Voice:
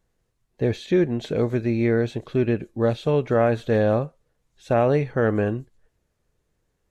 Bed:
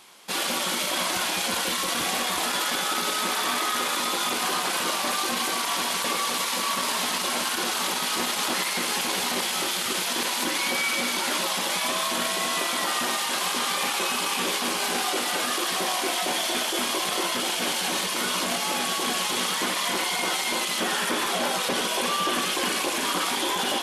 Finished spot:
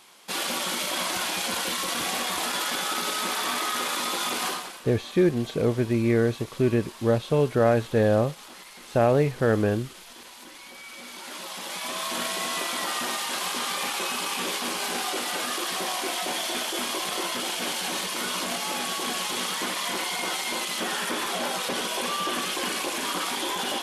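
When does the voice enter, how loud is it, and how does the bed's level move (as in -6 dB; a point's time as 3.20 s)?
4.25 s, -1.0 dB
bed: 4.48 s -2 dB
4.82 s -19 dB
10.73 s -19 dB
12.17 s -3 dB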